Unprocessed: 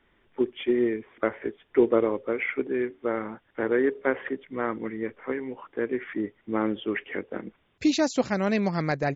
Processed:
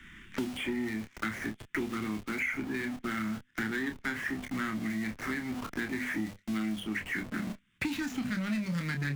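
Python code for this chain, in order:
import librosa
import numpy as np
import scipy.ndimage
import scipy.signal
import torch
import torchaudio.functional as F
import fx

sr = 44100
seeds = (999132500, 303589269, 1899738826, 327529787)

p1 = scipy.signal.medfilt(x, 9)
p2 = scipy.signal.sosfilt(scipy.signal.cheby1(2, 1.0, [210.0, 1700.0], 'bandstop', fs=sr, output='sos'), p1)
p3 = fx.hum_notches(p2, sr, base_hz=50, count=5)
p4 = fx.leveller(p3, sr, passes=2)
p5 = fx.schmitt(p4, sr, flips_db=-45.5)
p6 = p4 + (p5 * 10.0 ** (-9.5 / 20.0))
p7 = fx.doubler(p6, sr, ms=28.0, db=-7.0)
p8 = fx.band_squash(p7, sr, depth_pct=100)
y = p8 * 10.0 ** (-8.5 / 20.0)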